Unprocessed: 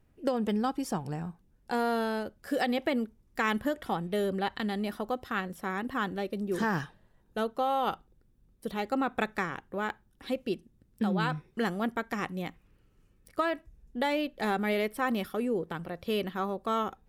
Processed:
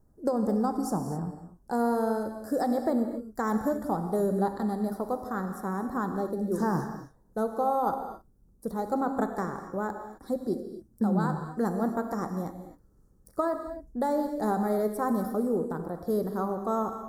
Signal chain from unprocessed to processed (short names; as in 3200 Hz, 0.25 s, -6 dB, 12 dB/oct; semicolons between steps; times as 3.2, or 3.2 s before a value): Butterworth band-stop 2700 Hz, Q 0.57; non-linear reverb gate 0.29 s flat, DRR 6 dB; gain +2 dB